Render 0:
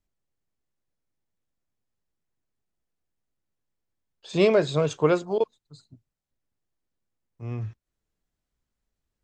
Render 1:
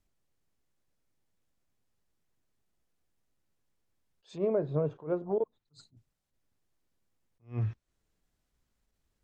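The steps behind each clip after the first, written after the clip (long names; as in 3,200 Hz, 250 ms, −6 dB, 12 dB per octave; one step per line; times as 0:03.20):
treble cut that deepens with the level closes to 780 Hz, closed at −22 dBFS
downward compressor 5 to 1, threshold −30 dBFS, peak gain reduction 13 dB
level that may rise only so fast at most 220 dB per second
level +4 dB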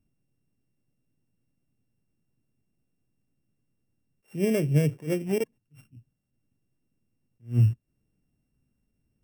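samples sorted by size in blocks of 16 samples
octave-band graphic EQ 125/250/1,000/4,000 Hz +11/+9/−5/−10 dB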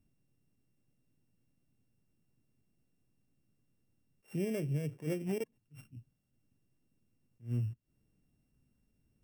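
downward compressor 20 to 1, threshold −31 dBFS, peak gain reduction 16 dB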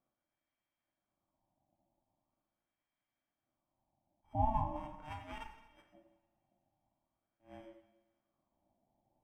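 LFO wah 0.42 Hz 350–1,500 Hz, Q 2.1
coupled-rooms reverb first 0.9 s, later 2.8 s, from −25 dB, DRR 2.5 dB
ring modulation 450 Hz
level +7.5 dB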